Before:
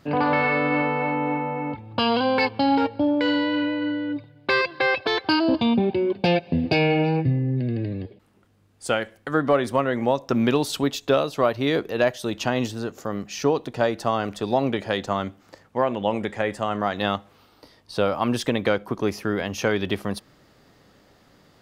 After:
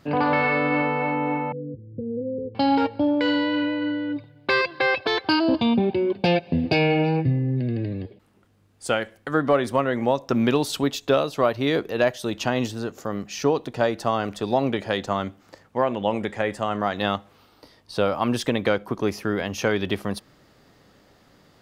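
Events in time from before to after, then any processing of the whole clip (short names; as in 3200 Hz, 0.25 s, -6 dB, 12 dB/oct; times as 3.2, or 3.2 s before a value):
1.52–2.55 rippled Chebyshev low-pass 520 Hz, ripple 6 dB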